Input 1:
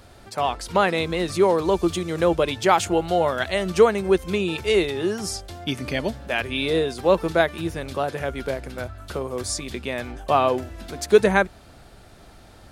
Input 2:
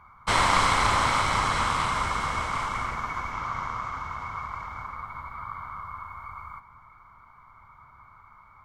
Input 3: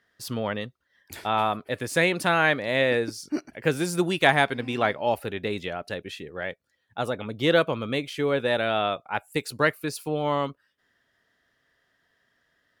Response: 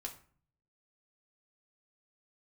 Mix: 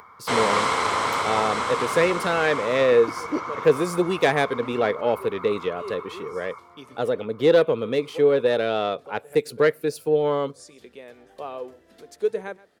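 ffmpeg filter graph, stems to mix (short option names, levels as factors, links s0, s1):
-filter_complex "[0:a]adelay=1100,volume=0.126,asplit=2[s0][s1];[s1]volume=0.1[s2];[1:a]volume=0.631,asplit=2[s3][s4];[s4]volume=0.631[s5];[2:a]lowshelf=f=220:g=8,aeval=exprs='(tanh(3.98*val(0)+0.45)-tanh(0.45))/3.98':c=same,volume=0.841,asplit=3[s6][s7][s8];[s7]volume=0.112[s9];[s8]apad=whole_len=609105[s10];[s0][s10]sidechaincompress=threshold=0.00891:ratio=8:attack=8.5:release=140[s11];[3:a]atrim=start_sample=2205[s12];[s5][s9]amix=inputs=2:normalize=0[s13];[s13][s12]afir=irnorm=-1:irlink=0[s14];[s2]aecho=0:1:128:1[s15];[s11][s3][s6][s14][s15]amix=inputs=5:normalize=0,highpass=160,equalizer=f=460:w=3.4:g=12.5,acompressor=mode=upward:threshold=0.00794:ratio=2.5"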